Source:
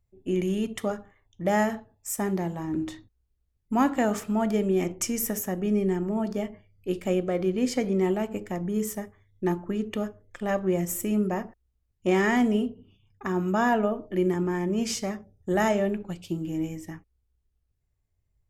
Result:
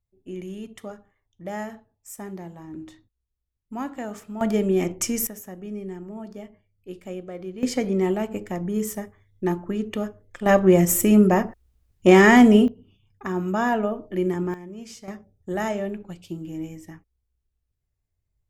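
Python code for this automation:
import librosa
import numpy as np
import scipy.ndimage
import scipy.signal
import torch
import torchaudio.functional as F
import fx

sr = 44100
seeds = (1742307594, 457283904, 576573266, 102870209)

y = fx.gain(x, sr, db=fx.steps((0.0, -8.5), (4.41, 3.0), (5.27, -9.0), (7.63, 2.0), (10.46, 10.0), (12.68, 0.5), (14.54, -12.0), (15.08, -3.0)))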